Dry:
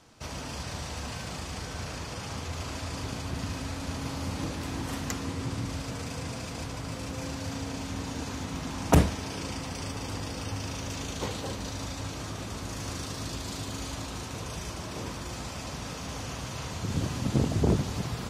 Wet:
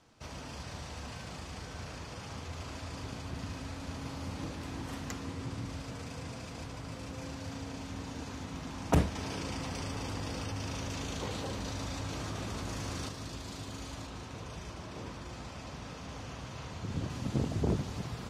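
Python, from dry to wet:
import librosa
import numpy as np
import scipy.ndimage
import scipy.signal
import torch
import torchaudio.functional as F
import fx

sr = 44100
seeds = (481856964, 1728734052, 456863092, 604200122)

y = fx.env_flatten(x, sr, amount_pct=70, at=(9.15, 13.09))
y = fx.high_shelf(y, sr, hz=7300.0, db=-7.5, at=(14.07, 17.1))
y = fx.high_shelf(y, sr, hz=7500.0, db=-7.0)
y = y * 10.0 ** (-6.0 / 20.0)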